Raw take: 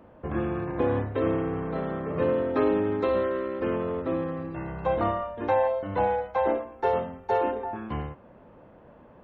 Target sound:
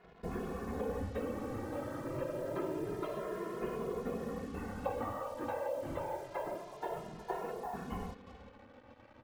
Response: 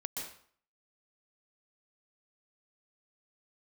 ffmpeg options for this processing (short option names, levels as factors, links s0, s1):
-filter_complex "[0:a]acompressor=threshold=0.0355:ratio=6,asplit=2[s0][s1];[s1]adelay=361.5,volume=0.2,highshelf=f=4000:g=-8.13[s2];[s0][s2]amix=inputs=2:normalize=0,afftfilt=real='hypot(re,im)*cos(2*PI*random(0))':imag='hypot(re,im)*sin(2*PI*random(1))':win_size=512:overlap=0.75,acrusher=bits=8:mix=0:aa=0.5,asplit=2[s3][s4];[s4]adelay=2.4,afreqshift=0.27[s5];[s3][s5]amix=inputs=2:normalize=1,volume=1.41"